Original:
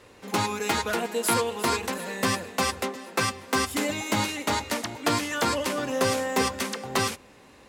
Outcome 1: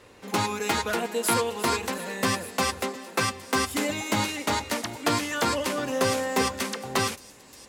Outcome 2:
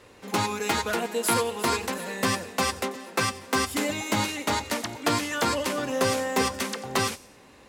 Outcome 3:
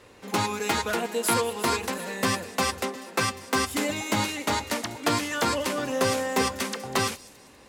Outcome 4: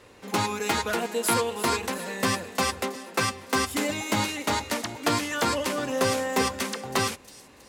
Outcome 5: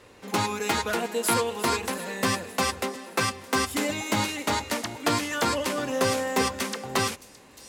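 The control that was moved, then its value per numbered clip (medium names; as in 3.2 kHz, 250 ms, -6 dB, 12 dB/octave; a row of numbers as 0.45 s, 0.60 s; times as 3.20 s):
feedback echo behind a high-pass, time: 1167 ms, 90 ms, 196 ms, 322 ms, 617 ms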